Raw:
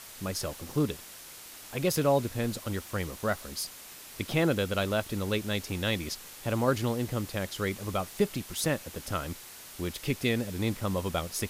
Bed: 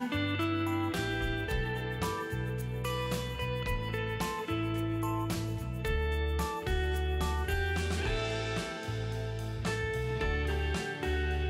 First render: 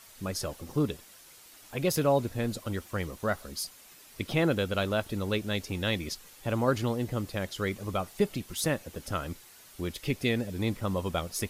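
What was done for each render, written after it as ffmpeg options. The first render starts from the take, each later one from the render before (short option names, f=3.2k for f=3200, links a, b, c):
-af "afftdn=nr=8:nf=-47"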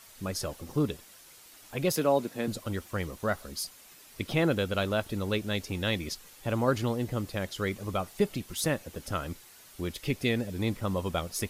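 -filter_complex "[0:a]asettb=1/sr,asplit=3[a][b][c];[a]atrim=end=1.924[d];[b]atrim=start=1.92:end=2.48,asetpts=PTS-STARTPTS,afade=t=in:d=0.004:c=qsin,afade=t=out:st=0.556:d=0.004:c=qsin,highpass=f=170:w=0.5412,highpass=f=170:w=1.3066[e];[c]atrim=start=2.476[f];[d][e]acrossfade=d=0.004:c1=hsin:c2=qsin[g];[g][f]acrossfade=d=0.004:c1=qsin:c2=hsin"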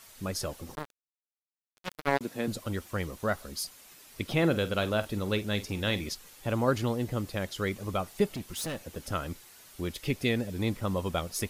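-filter_complex "[0:a]asettb=1/sr,asplit=3[a][b][c];[a]atrim=end=0.754[d];[b]atrim=start=0.75:end=2.21,asetpts=PTS-STARTPTS,afade=t=in:d=0.004:c=qsin,afade=t=out:st=1.456:d=0.004:c=qsin,acrusher=bits=2:mix=0:aa=0.5[e];[c]atrim=start=2.206[f];[d][e]acrossfade=d=0.004:c1=hsin:c2=qsin[g];[g][f]acrossfade=d=0.004:c1=qsin:c2=hsin,asettb=1/sr,asplit=3[h][i][j];[h]atrim=end=4.384[k];[i]atrim=start=4.38:end=6.09,asetpts=PTS-STARTPTS,afade=t=in:d=0.004:c=qsin,afade=t=out:st=1.706:d=0.004:c=qsin,asplit=2[l][m];[m]adelay=48,volume=-13.5dB[n];[l][n]amix=inputs=2:normalize=0,atrim=end_sample=75411[o];[j]atrim=start=6.086[p];[k][o]acrossfade=d=0.004:c1=hsin:c2=qsin[q];[q][p]acrossfade=d=0.004:c1=qsin:c2=hsin,asettb=1/sr,asplit=3[r][s][t];[r]atrim=end=8.324[u];[s]atrim=start=8.32:end=8.81,asetpts=PTS-STARTPTS,afade=t=in:d=0.004:c=qsin,afade=t=out:st=0.486:d=0.004:c=qsin,asoftclip=type=hard:threshold=-32dB[v];[t]atrim=start=8.806[w];[u][v]acrossfade=d=0.004:c1=hsin:c2=qsin[x];[x][w]acrossfade=d=0.004:c1=qsin:c2=hsin"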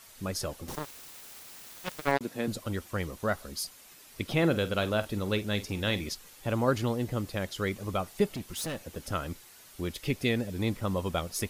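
-filter_complex "[0:a]asettb=1/sr,asplit=3[a][b][c];[a]atrim=end=0.684[d];[b]atrim=start=0.68:end=2.12,asetpts=PTS-STARTPTS,afade=t=in:d=0.004:c=qsin,afade=t=out:st=1.436:d=0.004:c=qsin,aeval=exprs='val(0)+0.5*0.0158*sgn(val(0))':c=same[e];[c]atrim=start=2.116[f];[d][e]acrossfade=d=0.004:c1=hsin:c2=qsin[g];[g][f]acrossfade=d=0.004:c1=qsin:c2=hsin"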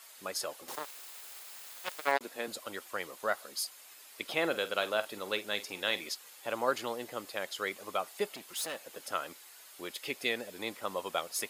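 -af "highpass=550,bandreject=f=5.8k:w=15"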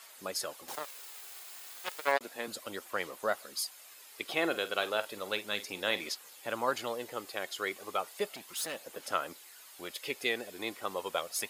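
-af "aphaser=in_gain=1:out_gain=1:delay=2.8:decay=0.29:speed=0.33:type=sinusoidal"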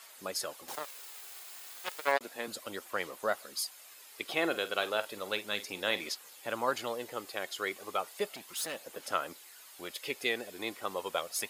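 -af anull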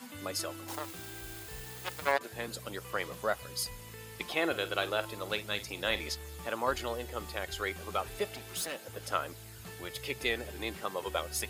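-filter_complex "[1:a]volume=-14.5dB[a];[0:a][a]amix=inputs=2:normalize=0"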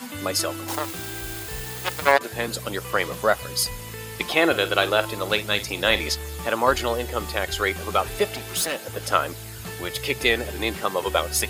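-af "volume=11.5dB"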